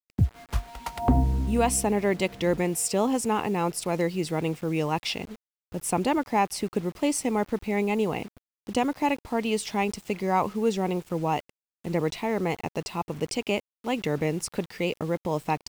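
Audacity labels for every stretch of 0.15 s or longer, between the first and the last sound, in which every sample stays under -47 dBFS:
5.360000	5.720000	silence
8.380000	8.670000	silence
11.500000	11.840000	silence
13.600000	13.840000	silence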